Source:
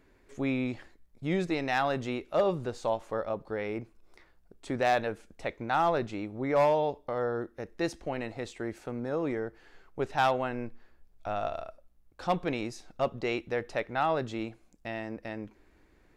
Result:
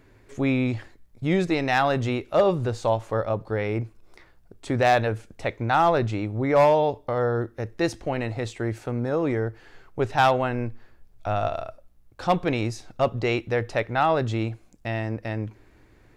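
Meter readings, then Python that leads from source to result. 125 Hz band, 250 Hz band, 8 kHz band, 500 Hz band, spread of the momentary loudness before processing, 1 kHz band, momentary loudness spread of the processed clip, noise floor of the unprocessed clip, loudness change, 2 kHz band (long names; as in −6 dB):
+12.5 dB, +7.0 dB, +6.5 dB, +6.5 dB, 14 LU, +6.5 dB, 12 LU, −63 dBFS, +7.0 dB, +6.5 dB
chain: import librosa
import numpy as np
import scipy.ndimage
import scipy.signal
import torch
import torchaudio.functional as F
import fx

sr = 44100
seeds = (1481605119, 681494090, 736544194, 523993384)

y = fx.peak_eq(x, sr, hz=110.0, db=12.5, octaves=0.32)
y = F.gain(torch.from_numpy(y), 6.5).numpy()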